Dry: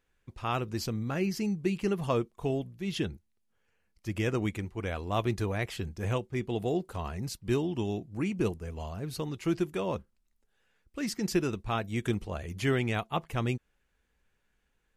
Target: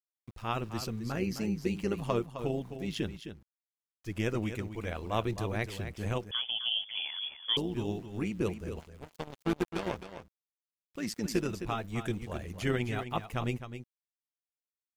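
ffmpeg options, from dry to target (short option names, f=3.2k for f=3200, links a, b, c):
-filter_complex "[0:a]asplit=3[a][b][c];[a]afade=t=out:st=8.79:d=0.02[d];[b]aeval=exprs='0.133*(cos(1*acos(clip(val(0)/0.133,-1,1)))-cos(1*PI/2))+0.0106*(cos(5*acos(clip(val(0)/0.133,-1,1)))-cos(5*PI/2))+0.0299*(cos(7*acos(clip(val(0)/0.133,-1,1)))-cos(7*PI/2))':c=same,afade=t=in:st=8.79:d=0.02,afade=t=out:st=9.96:d=0.02[e];[c]afade=t=in:st=9.96:d=0.02[f];[d][e][f]amix=inputs=3:normalize=0,aeval=exprs='val(0)*gte(abs(val(0)),0.00282)':c=same,tremolo=f=110:d=0.621,asplit=2[g][h];[h]aecho=0:1:261:0.316[i];[g][i]amix=inputs=2:normalize=0,asettb=1/sr,asplit=3[j][k][l];[j]atrim=end=6.314[m];[k]atrim=start=6.31:end=7.57,asetpts=PTS-STARTPTS,afade=t=in:d=0.004:c=qsin,afade=t=out:st=1.256:d=0.004:c=qsin,lowpass=f=3k:t=q:w=0.5098,lowpass=f=3k:t=q:w=0.6013,lowpass=f=3k:t=q:w=0.9,lowpass=f=3k:t=q:w=2.563,afreqshift=-3500[n];[l]atrim=start=7.566[o];[m][n]acrossfade=d=0.004:c1=hsin:c2=qsin[p];[p][o]acrossfade=d=0.004:c1=qsin:c2=hsin"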